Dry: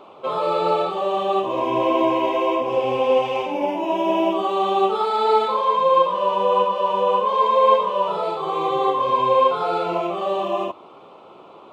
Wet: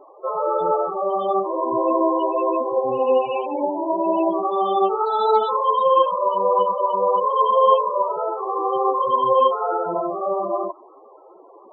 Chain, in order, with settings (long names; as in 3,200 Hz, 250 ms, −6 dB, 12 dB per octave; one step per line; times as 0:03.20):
high-shelf EQ 4,300 Hz +4.5 dB
spectral peaks only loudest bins 16